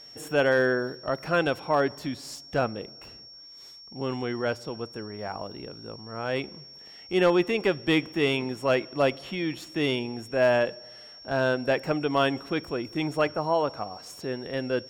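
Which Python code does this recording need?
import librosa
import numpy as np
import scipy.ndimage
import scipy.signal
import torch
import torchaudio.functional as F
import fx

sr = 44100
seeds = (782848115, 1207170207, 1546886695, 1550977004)

y = fx.fix_declip(x, sr, threshold_db=-13.5)
y = fx.notch(y, sr, hz=5500.0, q=30.0)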